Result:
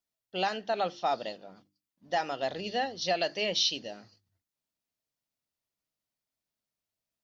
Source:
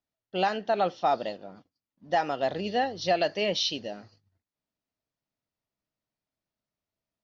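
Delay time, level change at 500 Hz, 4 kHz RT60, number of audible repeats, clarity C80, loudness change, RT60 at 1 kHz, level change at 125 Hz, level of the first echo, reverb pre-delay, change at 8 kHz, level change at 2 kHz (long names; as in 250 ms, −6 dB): no echo audible, −4.5 dB, no reverb audible, no echo audible, no reverb audible, −3.0 dB, no reverb audible, −6.0 dB, no echo audible, no reverb audible, can't be measured, −2.0 dB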